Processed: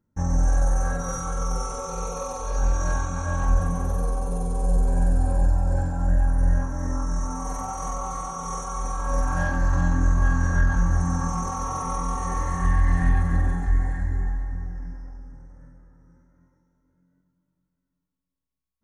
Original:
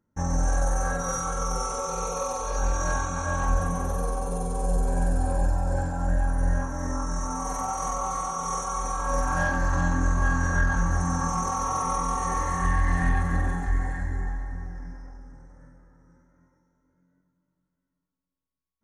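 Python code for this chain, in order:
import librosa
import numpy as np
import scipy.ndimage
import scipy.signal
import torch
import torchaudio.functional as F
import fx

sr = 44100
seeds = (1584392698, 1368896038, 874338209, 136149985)

y = fx.low_shelf(x, sr, hz=250.0, db=7.5)
y = y * librosa.db_to_amplitude(-3.0)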